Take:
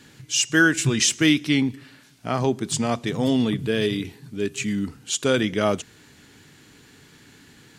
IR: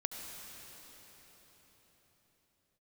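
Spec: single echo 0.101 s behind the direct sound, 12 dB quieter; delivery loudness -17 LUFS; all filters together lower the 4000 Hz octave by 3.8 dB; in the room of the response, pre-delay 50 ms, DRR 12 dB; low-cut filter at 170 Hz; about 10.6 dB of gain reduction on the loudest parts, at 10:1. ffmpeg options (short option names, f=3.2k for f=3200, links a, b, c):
-filter_complex "[0:a]highpass=170,equalizer=f=4k:t=o:g=-5.5,acompressor=threshold=-24dB:ratio=10,aecho=1:1:101:0.251,asplit=2[a][b];[1:a]atrim=start_sample=2205,adelay=50[c];[b][c]afir=irnorm=-1:irlink=0,volume=-13dB[d];[a][d]amix=inputs=2:normalize=0,volume=12dB"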